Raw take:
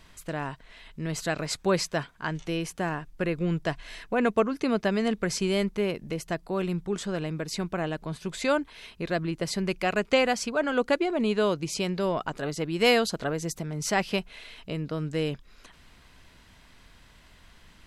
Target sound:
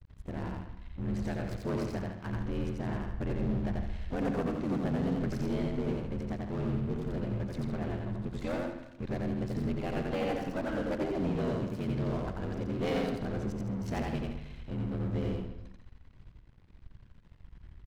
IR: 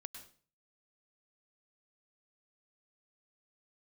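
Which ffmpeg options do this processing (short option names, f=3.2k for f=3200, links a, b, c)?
-filter_complex "[0:a]aemphasis=mode=reproduction:type=riaa,aeval=exprs='sgn(val(0))*max(abs(val(0))-0.015,0)':c=same,aeval=exprs='val(0)*sin(2*PI*43*n/s)':c=same,asplit=3[a][b][c];[b]asetrate=22050,aresample=44100,atempo=2,volume=-11dB[d];[c]asetrate=58866,aresample=44100,atempo=0.749154,volume=-17dB[e];[a][d][e]amix=inputs=3:normalize=0,asoftclip=type=tanh:threshold=-21.5dB,aecho=1:1:87.46|160.3:0.794|0.355,asplit=2[f][g];[1:a]atrim=start_sample=2205,lowpass=4.9k,adelay=131[h];[g][h]afir=irnorm=-1:irlink=0,volume=-6dB[i];[f][i]amix=inputs=2:normalize=0,volume=-6dB"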